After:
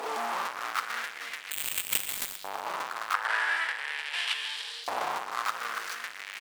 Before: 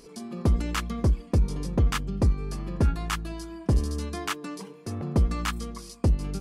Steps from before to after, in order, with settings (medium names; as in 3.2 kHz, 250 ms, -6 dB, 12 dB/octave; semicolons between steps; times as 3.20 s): median filter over 25 samples; in parallel at -0.5 dB: peak limiter -26.5 dBFS, peak gain reduction 11 dB; on the sum: compression 6:1, threshold -22 dBFS, peak gain reduction 7 dB; saturation -19 dBFS, distortion -21 dB; on a send: frequency-shifting echo 232 ms, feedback 36%, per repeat +53 Hz, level -21 dB; on the sum: fuzz box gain 48 dB, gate -54 dBFS; LFO high-pass saw up 0.41 Hz 790–4200 Hz; 1.51–2.36 s: careless resampling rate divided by 8×, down none, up zero stuff; 3.14–4.84 s: cabinet simulation 220–10000 Hz, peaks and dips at 350 Hz -10 dB, 490 Hz +9 dB, 870 Hz +10 dB, 1.7 kHz +10 dB, 3.1 kHz +4 dB, 6.5 kHz -7 dB; Schroeder reverb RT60 0.38 s, combs from 30 ms, DRR 13 dB; bit-crushed delay 118 ms, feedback 55%, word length 7-bit, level -15 dB; trim -13 dB